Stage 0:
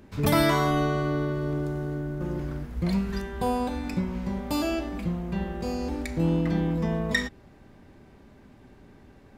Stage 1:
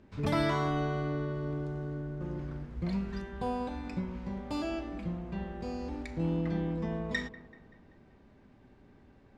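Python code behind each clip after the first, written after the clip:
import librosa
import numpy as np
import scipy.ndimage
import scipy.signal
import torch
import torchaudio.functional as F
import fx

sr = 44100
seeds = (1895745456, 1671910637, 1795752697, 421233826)

y = fx.air_absorb(x, sr, metres=81.0)
y = fx.echo_wet_lowpass(y, sr, ms=192, feedback_pct=49, hz=1900.0, wet_db=-15.5)
y = F.gain(torch.from_numpy(y), -7.0).numpy()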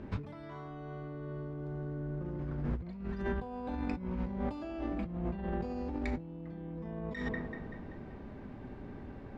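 y = fx.lowpass(x, sr, hz=1700.0, slope=6)
y = fx.over_compress(y, sr, threshold_db=-44.0, ratio=-1.0)
y = F.gain(torch.from_numpy(y), 5.0).numpy()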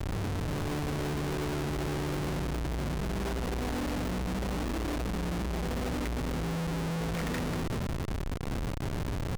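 y = fx.room_shoebox(x, sr, seeds[0], volume_m3=3400.0, walls='furnished', distance_m=4.3)
y = fx.schmitt(y, sr, flips_db=-39.5)
y = fx.doppler_dist(y, sr, depth_ms=0.42)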